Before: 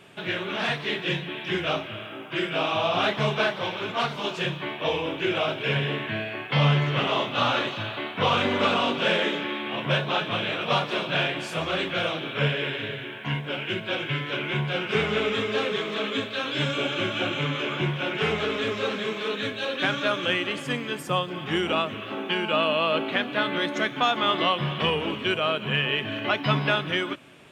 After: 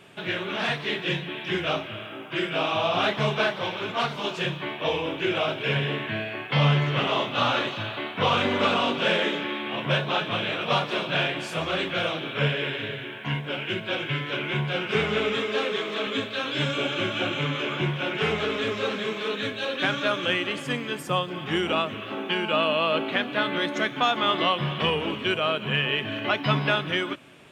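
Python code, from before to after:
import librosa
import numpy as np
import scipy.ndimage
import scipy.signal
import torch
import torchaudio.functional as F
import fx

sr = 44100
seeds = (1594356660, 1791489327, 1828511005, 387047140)

y = fx.highpass(x, sr, hz=210.0, slope=12, at=(15.38, 16.07))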